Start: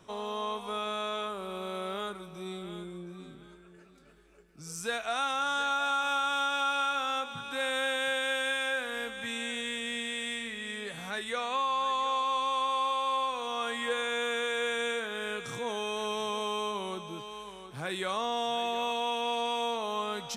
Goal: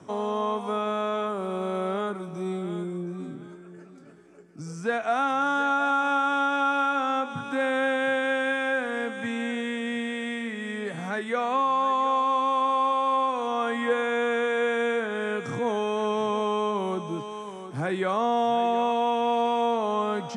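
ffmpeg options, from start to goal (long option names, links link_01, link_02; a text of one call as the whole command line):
ffmpeg -i in.wav -filter_complex "[0:a]lowshelf=frequency=450:gain=6.5,acrossover=split=680|4000[link_01][link_02][link_03];[link_03]acompressor=threshold=-55dB:ratio=6[link_04];[link_01][link_02][link_04]amix=inputs=3:normalize=0,highpass=frequency=100:width=0.5412,highpass=frequency=100:width=1.3066,equalizer=frequency=280:width_type=q:width=4:gain=6,equalizer=frequency=740:width_type=q:width=4:gain=3,equalizer=frequency=2700:width_type=q:width=4:gain=-6,equalizer=frequency=3800:width_type=q:width=4:gain=-10,lowpass=frequency=9500:width=0.5412,lowpass=frequency=9500:width=1.3066,volume=4.5dB" out.wav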